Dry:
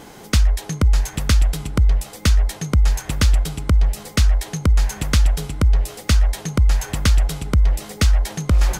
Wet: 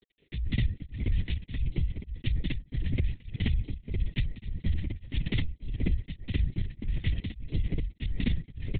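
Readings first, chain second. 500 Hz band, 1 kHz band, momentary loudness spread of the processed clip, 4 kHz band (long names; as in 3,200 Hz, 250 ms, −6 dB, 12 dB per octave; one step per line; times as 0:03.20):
−15.0 dB, below −25 dB, 5 LU, −15.0 dB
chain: on a send: loudspeakers that aren't time-aligned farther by 66 metres −3 dB, 87 metres −2 dB
on the sum: transient designer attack +2 dB, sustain −12 dB
reverb reduction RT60 0.57 s
centre clipping without the shift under −31 dBFS
elliptic band-stop filter 500–1,900 Hz
linear-prediction vocoder at 8 kHz whisper
downward compressor, threshold −17 dBFS, peak gain reduction 11.5 dB
tremolo along a rectified sine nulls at 1.7 Hz
level −5.5 dB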